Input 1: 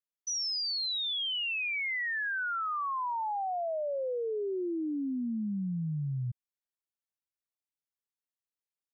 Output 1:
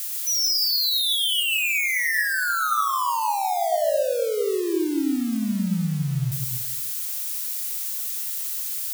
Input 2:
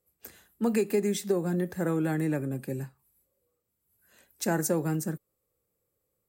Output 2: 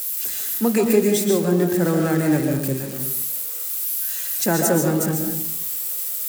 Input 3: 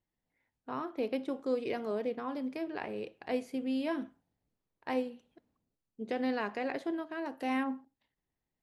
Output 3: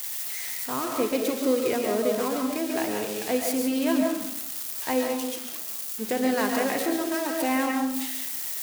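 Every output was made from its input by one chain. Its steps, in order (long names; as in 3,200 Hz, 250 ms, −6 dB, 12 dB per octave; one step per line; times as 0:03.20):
spike at every zero crossing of −29.5 dBFS
comb and all-pass reverb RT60 0.74 s, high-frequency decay 0.35×, pre-delay 95 ms, DRR 2 dB
level +7 dB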